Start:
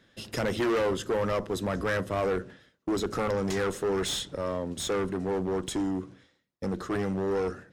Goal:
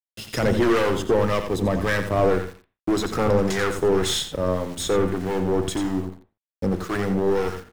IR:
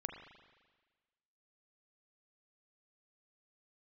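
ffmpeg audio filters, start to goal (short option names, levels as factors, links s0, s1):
-filter_complex "[0:a]aeval=exprs='0.0944*(cos(1*acos(clip(val(0)/0.0944,-1,1)))-cos(1*PI/2))+0.0119*(cos(3*acos(clip(val(0)/0.0944,-1,1)))-cos(3*PI/2))+0.00211*(cos(4*acos(clip(val(0)/0.0944,-1,1)))-cos(4*PI/2))':c=same,aeval=exprs='val(0)*gte(abs(val(0)),0.00447)':c=same,asettb=1/sr,asplit=3[s0][s1][s2];[s0]atrim=end=1.274[s3];[s1]atrim=start=1.27:end=2.02,asetpts=PTS-STARTPTS,afade=t=in:d=0.004:c=qsin,afade=t=out:st=0.746:d=0.004:c=qsin,bandreject=f=1400:w=6.4[s4];[s2]atrim=start=2.016[s5];[s3][s4]acrossfade=d=0.004:c1=hsin:c2=qsin[s6];[s6][s5]acrossfade=d=0.004:c1=qsin:c2=hsin,asplit=2[s7][s8];[s8]adelay=87.46,volume=0.398,highshelf=f=4000:g=-1.97[s9];[s7][s9]amix=inputs=2:normalize=0,acrossover=split=1000[s10][s11];[s10]aeval=exprs='val(0)*(1-0.5/2+0.5/2*cos(2*PI*1.8*n/s))':c=same[s12];[s11]aeval=exprs='val(0)*(1-0.5/2-0.5/2*cos(2*PI*1.8*n/s))':c=same[s13];[s12][s13]amix=inputs=2:normalize=0,asplit=2[s14][s15];[1:a]atrim=start_sample=2205,afade=t=out:st=0.21:d=0.01,atrim=end_sample=9702,lowshelf=f=180:g=11[s16];[s15][s16]afir=irnorm=-1:irlink=0,volume=0.501[s17];[s14][s17]amix=inputs=2:normalize=0,volume=2.24"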